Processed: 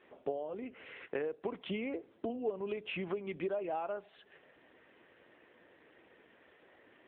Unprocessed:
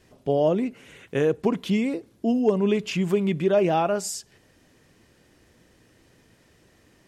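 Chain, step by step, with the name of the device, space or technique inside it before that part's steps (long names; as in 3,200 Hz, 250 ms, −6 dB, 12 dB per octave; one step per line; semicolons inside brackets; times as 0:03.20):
0:01.37–0:02.29: high-pass filter 58 Hz 24 dB per octave
voicemail (band-pass filter 420–2,800 Hz; downward compressor 8 to 1, threshold −36 dBFS, peak gain reduction 18.5 dB; level +2.5 dB; AMR narrowband 7.95 kbit/s 8,000 Hz)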